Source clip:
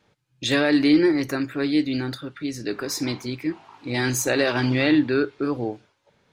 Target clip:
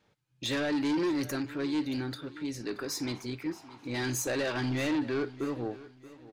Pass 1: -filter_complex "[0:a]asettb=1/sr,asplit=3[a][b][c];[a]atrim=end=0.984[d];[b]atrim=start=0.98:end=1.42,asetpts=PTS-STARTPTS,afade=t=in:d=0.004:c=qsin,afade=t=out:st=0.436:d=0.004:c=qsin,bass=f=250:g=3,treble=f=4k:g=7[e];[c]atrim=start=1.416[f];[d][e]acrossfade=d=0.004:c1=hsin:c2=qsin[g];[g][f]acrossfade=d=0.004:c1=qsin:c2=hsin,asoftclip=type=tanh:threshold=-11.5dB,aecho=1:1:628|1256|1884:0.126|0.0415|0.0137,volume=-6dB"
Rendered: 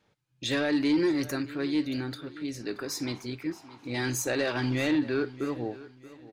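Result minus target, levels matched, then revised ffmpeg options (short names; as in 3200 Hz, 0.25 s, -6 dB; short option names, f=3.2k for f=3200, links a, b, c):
soft clip: distortion -9 dB
-filter_complex "[0:a]asettb=1/sr,asplit=3[a][b][c];[a]atrim=end=0.984[d];[b]atrim=start=0.98:end=1.42,asetpts=PTS-STARTPTS,afade=t=in:d=0.004:c=qsin,afade=t=out:st=0.436:d=0.004:c=qsin,bass=f=250:g=3,treble=f=4k:g=7[e];[c]atrim=start=1.416[f];[d][e]acrossfade=d=0.004:c1=hsin:c2=qsin[g];[g][f]acrossfade=d=0.004:c1=qsin:c2=hsin,asoftclip=type=tanh:threshold=-19.5dB,aecho=1:1:628|1256|1884:0.126|0.0415|0.0137,volume=-6dB"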